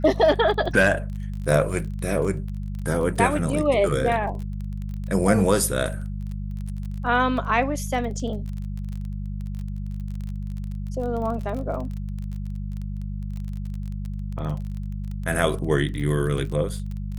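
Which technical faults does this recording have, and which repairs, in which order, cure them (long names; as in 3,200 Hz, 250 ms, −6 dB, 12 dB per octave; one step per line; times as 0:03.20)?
surface crackle 25 per second −31 dBFS
mains hum 50 Hz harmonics 4 −30 dBFS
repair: click removal
hum removal 50 Hz, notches 4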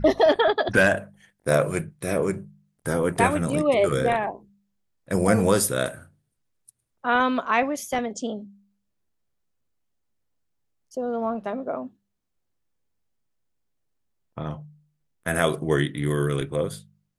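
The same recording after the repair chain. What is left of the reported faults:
none of them is left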